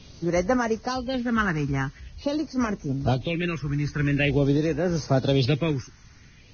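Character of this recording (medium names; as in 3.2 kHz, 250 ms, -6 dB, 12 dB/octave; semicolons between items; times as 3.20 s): phasing stages 4, 0.46 Hz, lowest notch 560–3500 Hz; a quantiser's noise floor 10-bit, dither triangular; random-step tremolo; Vorbis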